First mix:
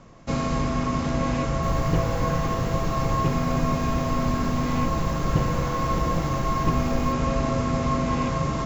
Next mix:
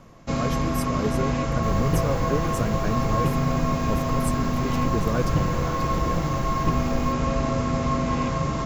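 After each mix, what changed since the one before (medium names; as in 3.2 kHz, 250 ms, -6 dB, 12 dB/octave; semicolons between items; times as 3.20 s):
speech: unmuted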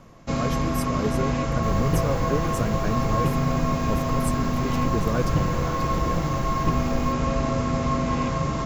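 no change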